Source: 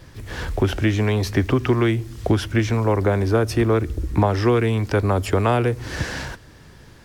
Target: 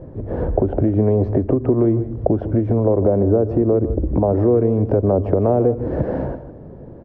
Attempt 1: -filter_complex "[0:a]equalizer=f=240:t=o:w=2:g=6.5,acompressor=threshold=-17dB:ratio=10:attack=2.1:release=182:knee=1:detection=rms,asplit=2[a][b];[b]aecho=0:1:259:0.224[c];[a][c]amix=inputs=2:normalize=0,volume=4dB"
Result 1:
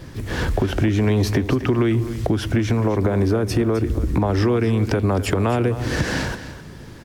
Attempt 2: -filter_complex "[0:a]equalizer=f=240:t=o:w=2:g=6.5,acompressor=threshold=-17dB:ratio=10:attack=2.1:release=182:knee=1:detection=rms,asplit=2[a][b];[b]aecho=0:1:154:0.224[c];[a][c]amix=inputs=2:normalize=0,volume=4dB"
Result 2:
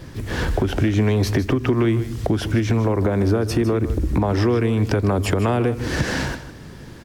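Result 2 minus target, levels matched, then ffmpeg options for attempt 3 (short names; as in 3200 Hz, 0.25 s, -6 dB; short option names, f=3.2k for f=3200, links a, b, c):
500 Hz band -3.0 dB
-filter_complex "[0:a]equalizer=f=240:t=o:w=2:g=6.5,acompressor=threshold=-17dB:ratio=10:attack=2.1:release=182:knee=1:detection=rms,lowpass=f=590:t=q:w=2.6,asplit=2[a][b];[b]aecho=0:1:154:0.224[c];[a][c]amix=inputs=2:normalize=0,volume=4dB"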